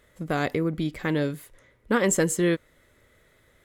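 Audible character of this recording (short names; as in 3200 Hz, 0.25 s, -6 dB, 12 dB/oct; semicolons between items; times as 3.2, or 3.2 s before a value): noise floor -62 dBFS; spectral tilt -5.0 dB/oct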